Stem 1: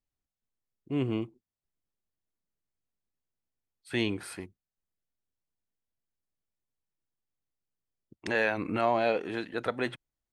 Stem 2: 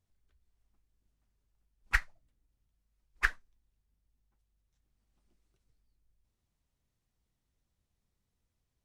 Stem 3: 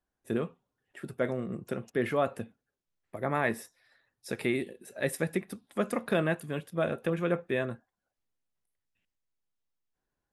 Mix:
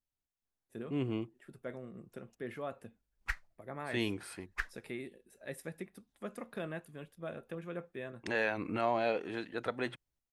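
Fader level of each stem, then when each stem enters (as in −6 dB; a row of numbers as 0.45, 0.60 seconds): −5.0, −8.5, −13.0 decibels; 0.00, 1.35, 0.45 seconds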